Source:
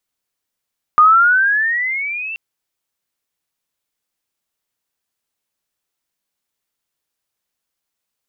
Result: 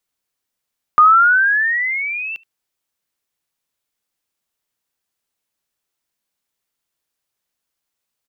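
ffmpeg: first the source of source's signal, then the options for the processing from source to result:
-f lavfi -i "aevalsrc='pow(10,(-5-18.5*t/1.38)/20)*sin(2*PI*1210*1.38/(14*log(2)/12)*(exp(14*log(2)/12*t/1.38)-1))':duration=1.38:sample_rate=44100"
-filter_complex "[0:a]acrossover=split=390[link_01][link_02];[link_02]aecho=1:1:74:0.0631[link_03];[link_01][link_03]amix=inputs=2:normalize=0"

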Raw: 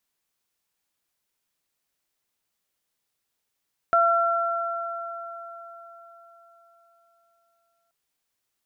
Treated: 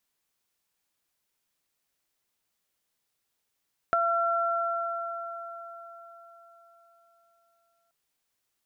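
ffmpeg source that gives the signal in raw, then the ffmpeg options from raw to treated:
-f lavfi -i "aevalsrc='0.106*pow(10,-3*t/4.4)*sin(2*PI*679*t)+0.141*pow(10,-3*t/4.08)*sin(2*PI*1358*t)':duration=3.98:sample_rate=44100"
-af "acompressor=threshold=-23dB:ratio=6"

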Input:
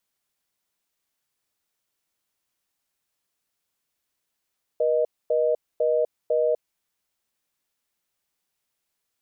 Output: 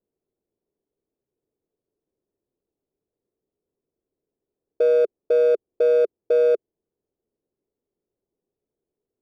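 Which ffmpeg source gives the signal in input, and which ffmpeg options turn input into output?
-f lavfi -i "aevalsrc='0.0841*(sin(2*PI*480*t)+sin(2*PI*620*t))*clip(min(mod(t,0.5),0.25-mod(t,0.5))/0.005,0,1)':duration=1.96:sample_rate=44100"
-filter_complex "[0:a]lowpass=frequency=410:width_type=q:width=3.5,asplit=2[link_01][link_02];[link_02]asoftclip=type=hard:threshold=-27dB,volume=-5dB[link_03];[link_01][link_03]amix=inputs=2:normalize=0"

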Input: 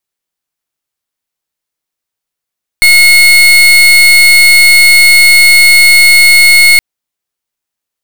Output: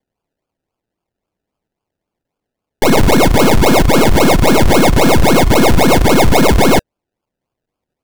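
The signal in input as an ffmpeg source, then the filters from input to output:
-f lavfi -i "aevalsrc='0.668*(2*lt(mod(2170*t,1),0.34)-1)':duration=3.97:sample_rate=44100"
-filter_complex "[0:a]bandreject=frequency=590:width=19,acrossover=split=760|1800[link_01][link_02][link_03];[link_03]alimiter=limit=-9dB:level=0:latency=1:release=20[link_04];[link_01][link_02][link_04]amix=inputs=3:normalize=0,acrusher=samples=32:mix=1:aa=0.000001:lfo=1:lforange=19.2:lforate=3.7"

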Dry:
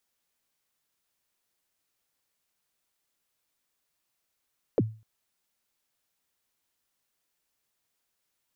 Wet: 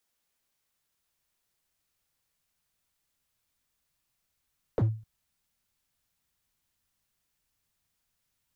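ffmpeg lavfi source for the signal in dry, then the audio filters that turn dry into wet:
-f lavfi -i "aevalsrc='0.15*pow(10,-3*t/0.35)*sin(2*PI*(580*0.037/log(110/580)*(exp(log(110/580)*min(t,0.037)/0.037)-1)+110*max(t-0.037,0)))':duration=0.25:sample_rate=44100"
-filter_complex "[0:a]asubboost=boost=4:cutoff=180,acrossover=split=100|460|1300[link_01][link_02][link_03][link_04];[link_02]volume=30.5dB,asoftclip=hard,volume=-30.5dB[link_05];[link_01][link_05][link_03][link_04]amix=inputs=4:normalize=0"

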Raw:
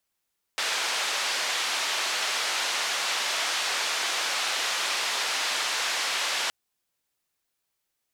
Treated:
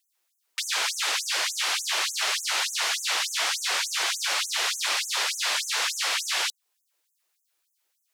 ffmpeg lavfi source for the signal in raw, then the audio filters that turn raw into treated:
-f lavfi -i "anoisesrc=color=white:duration=5.92:sample_rate=44100:seed=1,highpass=frequency=660,lowpass=frequency=4800,volume=-16.2dB"
-filter_complex "[0:a]asplit=2[link_01][link_02];[link_02]alimiter=level_in=3.5dB:limit=-24dB:level=0:latency=1:release=311,volume=-3.5dB,volume=-2dB[link_03];[link_01][link_03]amix=inputs=2:normalize=0,afftfilt=real='re*gte(b*sr/1024,250*pow(6200/250,0.5+0.5*sin(2*PI*3.4*pts/sr)))':imag='im*gte(b*sr/1024,250*pow(6200/250,0.5+0.5*sin(2*PI*3.4*pts/sr)))':win_size=1024:overlap=0.75"

